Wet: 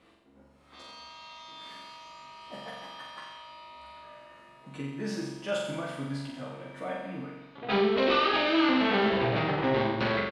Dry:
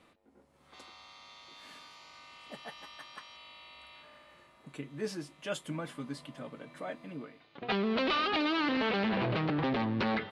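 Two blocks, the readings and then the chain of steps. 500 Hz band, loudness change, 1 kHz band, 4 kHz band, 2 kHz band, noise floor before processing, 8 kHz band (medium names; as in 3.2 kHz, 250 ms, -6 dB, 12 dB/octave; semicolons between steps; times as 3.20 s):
+7.0 dB, +4.5 dB, +5.0 dB, +4.5 dB, +4.5 dB, -65 dBFS, +2.0 dB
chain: treble shelf 9.3 kHz -10 dB; doubling 15 ms -2.5 dB; flutter echo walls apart 7.4 m, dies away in 0.97 s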